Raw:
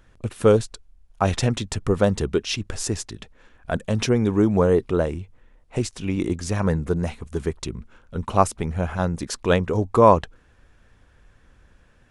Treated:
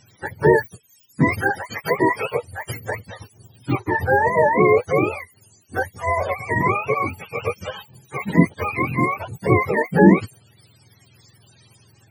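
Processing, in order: spectrum mirrored in octaves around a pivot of 440 Hz; 1.41–2.65 HPF 270 Hz 6 dB/oct; in parallel at -1.5 dB: limiter -13.5 dBFS, peak gain reduction 10 dB

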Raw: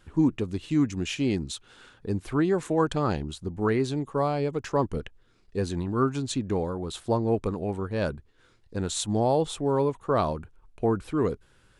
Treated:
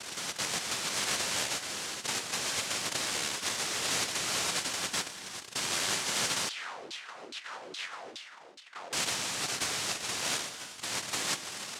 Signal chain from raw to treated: zero-crossing step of -31.5 dBFS; negative-ratio compressor -27 dBFS, ratio -1; noise vocoder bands 1; non-linear reverb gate 0.44 s flat, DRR 8.5 dB; 6.49–8.93 LFO band-pass saw down 2.4 Hz 300–4100 Hz; gain -5 dB

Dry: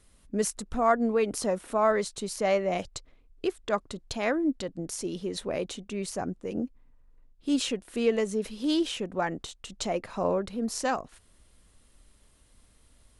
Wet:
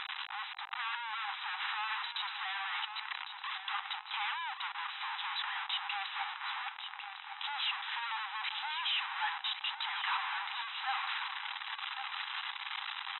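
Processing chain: infinite clipping; brick-wall FIR band-pass 760–4000 Hz; feedback echo 1.104 s, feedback 29%, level -9 dB

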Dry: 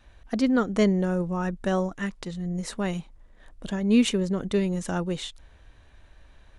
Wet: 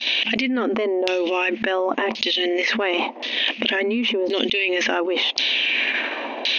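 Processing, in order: expander -49 dBFS; FFT band-pass 220–6600 Hz; LFO low-pass saw down 0.93 Hz 750–4400 Hz; resonant high shelf 1900 Hz +11 dB, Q 3; fast leveller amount 100%; gain -6 dB

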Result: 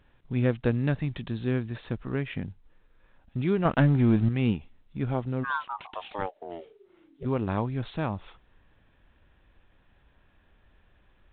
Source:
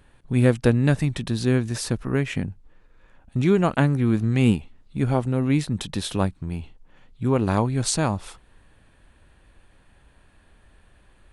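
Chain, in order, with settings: 3.65–4.29 sample leveller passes 2; 5.43–7.24 ring modulator 1400 Hz -> 270 Hz; gain -7 dB; µ-law 64 kbps 8000 Hz

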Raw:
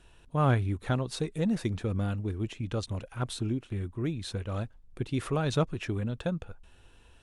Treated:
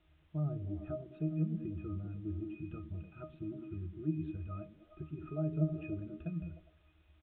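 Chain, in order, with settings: treble ducked by the level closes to 590 Hz, closed at -23 dBFS; spectral noise reduction 7 dB; in parallel at +3 dB: compressor 16:1, threshold -39 dBFS, peak gain reduction 19 dB; on the sum: octave resonator D#, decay 0.22 s; requantised 12-bit, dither triangular; downsampling 8000 Hz; on a send: delay with a stepping band-pass 0.102 s, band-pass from 210 Hz, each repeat 0.7 oct, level -4 dB; on the sum: gain +1.5 dB

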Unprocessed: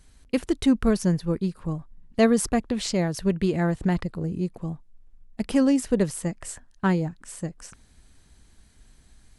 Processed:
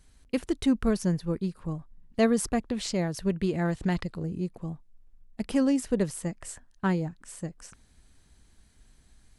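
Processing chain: 3.65–4.23 bell 4200 Hz +6 dB 2.3 oct; gain -4 dB

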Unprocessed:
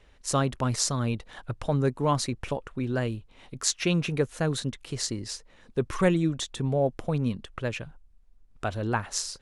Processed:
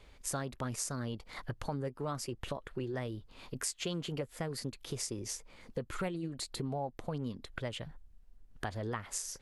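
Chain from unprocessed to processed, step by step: compressor 4:1, threshold -36 dBFS, peak gain reduction 16 dB; formant shift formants +3 st

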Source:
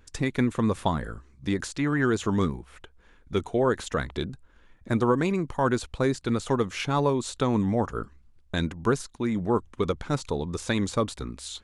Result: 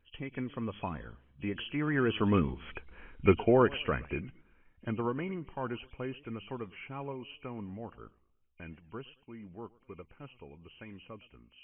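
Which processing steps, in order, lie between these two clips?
nonlinear frequency compression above 2200 Hz 4:1; Doppler pass-by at 3.01, 9 m/s, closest 2.7 m; warbling echo 0.112 s, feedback 38%, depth 205 cents, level -22.5 dB; gain +6 dB

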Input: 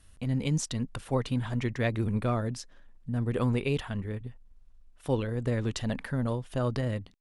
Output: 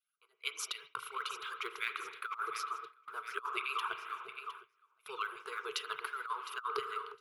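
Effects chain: median-filter separation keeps percussive; LFO high-pass saw down 2.8 Hz 690–2400 Hz; EQ curve 130 Hz 0 dB, 200 Hz -27 dB, 300 Hz -20 dB, 440 Hz +10 dB, 730 Hz -24 dB, 1300 Hz +11 dB, 5000 Hz -7 dB, 8600 Hz -14 dB, 12000 Hz +8 dB; on a send: echo with dull and thin repeats by turns 0.355 s, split 1300 Hz, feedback 74%, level -10.5 dB; on the sum: short-mantissa float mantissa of 6-bit; fixed phaser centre 360 Hz, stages 8; spring tank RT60 2.3 s, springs 37 ms, chirp 45 ms, DRR 9.5 dB; gate with hold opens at -38 dBFS; bell 190 Hz +8 dB 1.6 oct; negative-ratio compressor -38 dBFS, ratio -0.5; gain +2.5 dB

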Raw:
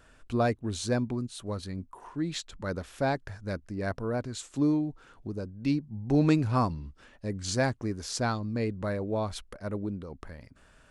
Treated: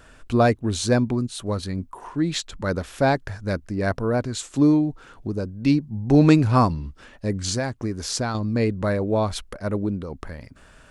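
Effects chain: 7.39–8.35 compressor 6:1, threshold -31 dBFS, peak gain reduction 9.5 dB; gain +8.5 dB

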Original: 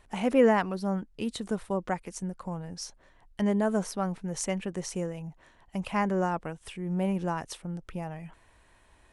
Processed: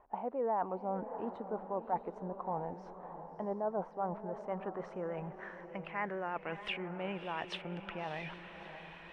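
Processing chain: tone controls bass -13 dB, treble -4 dB; reverse; compressor 4:1, threshold -47 dBFS, peak gain reduction 23 dB; reverse; low-pass sweep 870 Hz -> 2800 Hz, 4.02–6.7; diffused feedback echo 0.643 s, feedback 42%, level -10 dB; vibrato 6.5 Hz 38 cents; gain +7 dB

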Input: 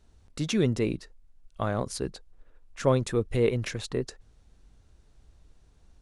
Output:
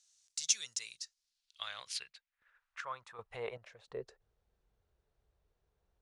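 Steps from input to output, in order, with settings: passive tone stack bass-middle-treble 10-0-10; 1.65–3.88 chopper 1.3 Hz, depth 65%, duty 50%; band-pass sweep 6400 Hz -> 380 Hz, 0.96–4.21; gain +11 dB

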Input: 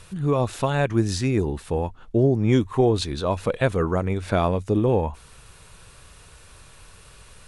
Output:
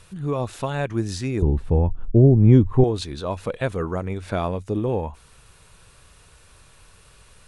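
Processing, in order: 1.42–2.84 tilt -4 dB/oct; gain -3.5 dB

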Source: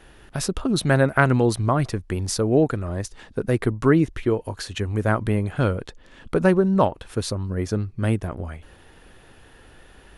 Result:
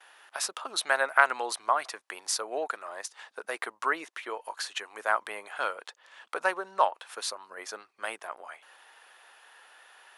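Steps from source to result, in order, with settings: gate with hold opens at -44 dBFS; ladder high-pass 670 Hz, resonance 25%; gain +4 dB

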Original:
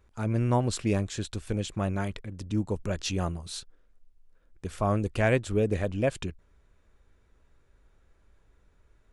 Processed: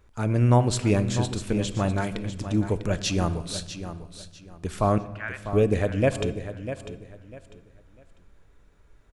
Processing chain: 4.98–5.53 ladder band-pass 1600 Hz, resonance 50%; feedback echo 0.648 s, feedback 26%, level -11 dB; reverb RT60 1.4 s, pre-delay 7 ms, DRR 12.5 dB; gain +4.5 dB

